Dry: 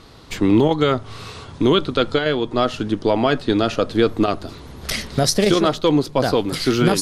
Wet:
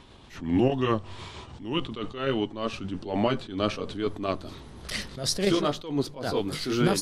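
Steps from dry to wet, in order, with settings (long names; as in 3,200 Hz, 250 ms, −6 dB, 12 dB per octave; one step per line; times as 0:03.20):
pitch glide at a constant tempo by −3 semitones ending unshifted
level that may rise only so fast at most 110 dB per second
level −5 dB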